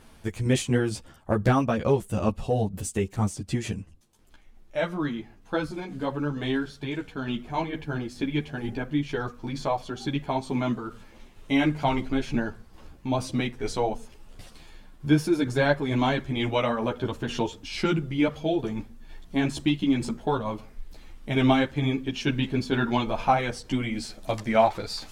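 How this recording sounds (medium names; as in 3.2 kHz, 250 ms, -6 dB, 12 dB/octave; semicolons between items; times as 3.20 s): tremolo saw down 2.2 Hz, depth 35%; a shimmering, thickened sound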